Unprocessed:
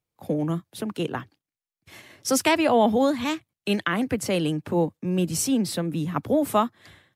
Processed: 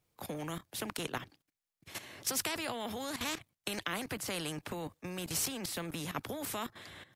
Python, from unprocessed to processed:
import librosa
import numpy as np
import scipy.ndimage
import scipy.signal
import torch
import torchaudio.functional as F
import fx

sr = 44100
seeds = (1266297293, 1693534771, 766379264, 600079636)

y = fx.level_steps(x, sr, step_db=15)
y = fx.spectral_comp(y, sr, ratio=2.0)
y = y * librosa.db_to_amplitude(-2.0)